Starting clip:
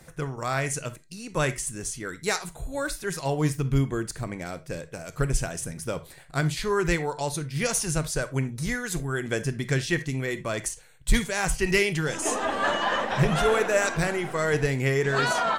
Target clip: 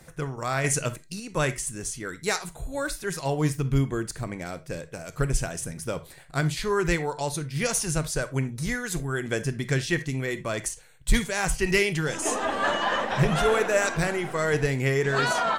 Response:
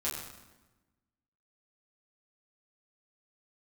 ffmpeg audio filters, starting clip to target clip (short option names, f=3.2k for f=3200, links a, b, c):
-filter_complex "[0:a]asettb=1/sr,asplit=3[a][b][c];[a]atrim=end=0.644[d];[b]atrim=start=0.64:end=1.2,asetpts=PTS-STARTPTS,afade=t=in:d=0.004:c=qsin,afade=t=out:st=0.556:d=0.004:c=qsin,acontrast=32[e];[c]atrim=start=1.196[f];[d][e]acrossfade=d=0.004:c1=hsin:c2=qsin[g];[g][f]acrossfade=d=0.004:c1=qsin:c2=hsin"